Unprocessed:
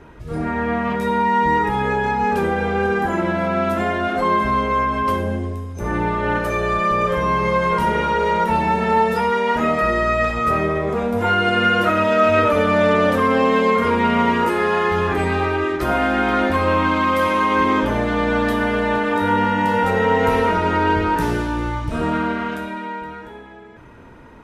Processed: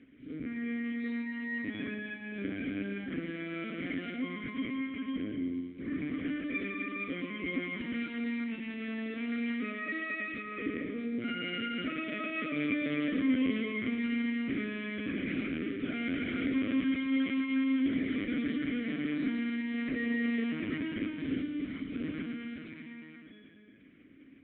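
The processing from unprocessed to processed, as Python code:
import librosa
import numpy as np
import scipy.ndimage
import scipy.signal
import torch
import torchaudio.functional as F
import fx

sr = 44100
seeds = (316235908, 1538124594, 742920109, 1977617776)

p1 = fx.lpc_vocoder(x, sr, seeds[0], excitation='pitch_kept', order=10)
p2 = fx.vowel_filter(p1, sr, vowel='i')
y = p2 + fx.echo_feedback(p2, sr, ms=111, feedback_pct=58, wet_db=-11.5, dry=0)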